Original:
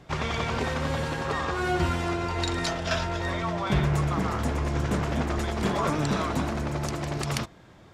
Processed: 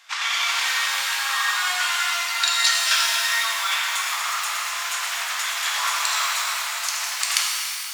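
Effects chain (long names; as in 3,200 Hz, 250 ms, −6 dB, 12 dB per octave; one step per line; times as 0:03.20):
high-pass filter 980 Hz 24 dB per octave
tilt shelving filter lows −8.5 dB, about 1,300 Hz
reverb with rising layers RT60 2.7 s, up +12 semitones, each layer −8 dB, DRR −2.5 dB
level +3.5 dB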